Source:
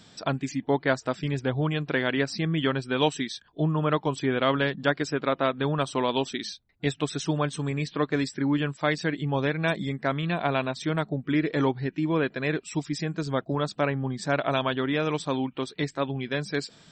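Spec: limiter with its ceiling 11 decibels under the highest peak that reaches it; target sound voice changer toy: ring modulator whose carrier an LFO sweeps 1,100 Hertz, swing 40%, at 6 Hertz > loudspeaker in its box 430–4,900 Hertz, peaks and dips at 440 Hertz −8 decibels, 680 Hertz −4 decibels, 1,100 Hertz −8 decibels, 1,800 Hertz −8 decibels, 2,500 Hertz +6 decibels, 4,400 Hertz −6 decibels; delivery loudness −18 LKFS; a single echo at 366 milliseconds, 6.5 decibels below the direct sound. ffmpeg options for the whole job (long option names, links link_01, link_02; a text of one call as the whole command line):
ffmpeg -i in.wav -af "alimiter=limit=-19.5dB:level=0:latency=1,aecho=1:1:366:0.473,aeval=exprs='val(0)*sin(2*PI*1100*n/s+1100*0.4/6*sin(2*PI*6*n/s))':channel_layout=same,highpass=430,equalizer=frequency=440:width_type=q:width=4:gain=-8,equalizer=frequency=680:width_type=q:width=4:gain=-4,equalizer=frequency=1100:width_type=q:width=4:gain=-8,equalizer=frequency=1800:width_type=q:width=4:gain=-8,equalizer=frequency=2500:width_type=q:width=4:gain=6,equalizer=frequency=4400:width_type=q:width=4:gain=-6,lowpass=frequency=4900:width=0.5412,lowpass=frequency=4900:width=1.3066,volume=17.5dB" out.wav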